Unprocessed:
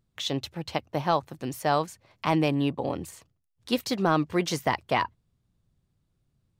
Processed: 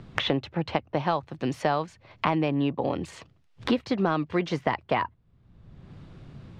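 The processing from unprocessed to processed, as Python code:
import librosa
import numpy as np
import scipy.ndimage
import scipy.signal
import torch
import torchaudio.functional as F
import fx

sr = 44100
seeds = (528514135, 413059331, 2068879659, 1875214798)

y = scipy.signal.sosfilt(scipy.signal.butter(2, 3000.0, 'lowpass', fs=sr, output='sos'), x)
y = fx.band_squash(y, sr, depth_pct=100)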